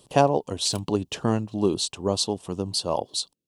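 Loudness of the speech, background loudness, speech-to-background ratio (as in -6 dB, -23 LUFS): -25.5 LUFS, -45.0 LUFS, 19.5 dB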